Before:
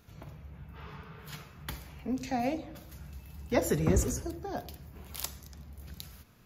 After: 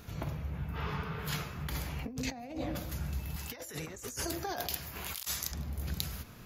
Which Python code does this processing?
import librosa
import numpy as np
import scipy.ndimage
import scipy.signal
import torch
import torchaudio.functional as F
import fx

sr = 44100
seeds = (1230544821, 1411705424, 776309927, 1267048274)

y = fx.tilt_shelf(x, sr, db=-9.0, hz=700.0, at=(3.36, 5.52))
y = fx.over_compress(y, sr, threshold_db=-42.0, ratio=-1.0)
y = F.gain(torch.from_numpy(y), 4.0).numpy()